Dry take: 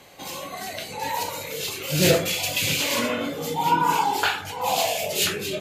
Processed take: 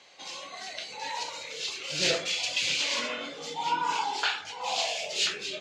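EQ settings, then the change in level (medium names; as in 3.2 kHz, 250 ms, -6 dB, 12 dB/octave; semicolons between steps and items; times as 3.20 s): high-pass 570 Hz 6 dB/octave; low-pass 5.9 kHz 24 dB/octave; treble shelf 2.8 kHz +9 dB; -7.5 dB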